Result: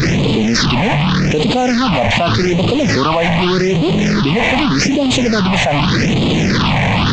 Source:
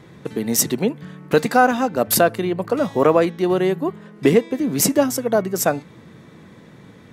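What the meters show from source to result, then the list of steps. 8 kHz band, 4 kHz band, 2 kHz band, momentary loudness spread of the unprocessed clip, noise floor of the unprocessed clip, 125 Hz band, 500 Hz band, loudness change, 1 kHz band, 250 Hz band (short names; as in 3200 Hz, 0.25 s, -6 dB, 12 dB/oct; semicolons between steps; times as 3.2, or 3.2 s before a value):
-1.5 dB, +14.5 dB, +10.0 dB, 8 LU, -46 dBFS, +14.5 dB, +1.5 dB, +5.5 dB, +5.0 dB, +8.0 dB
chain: delta modulation 32 kbps, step -16 dBFS; phaser stages 6, 0.84 Hz, lowest notch 350–1600 Hz; fast leveller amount 100%; gain -1 dB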